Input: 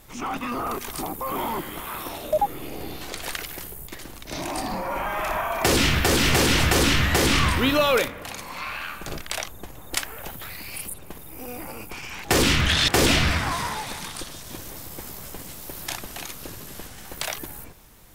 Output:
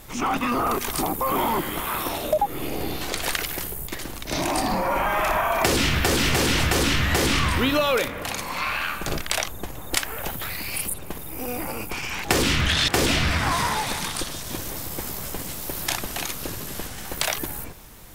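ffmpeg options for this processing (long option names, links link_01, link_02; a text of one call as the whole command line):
ffmpeg -i in.wav -af "acompressor=threshold=-24dB:ratio=6,volume=6dB" out.wav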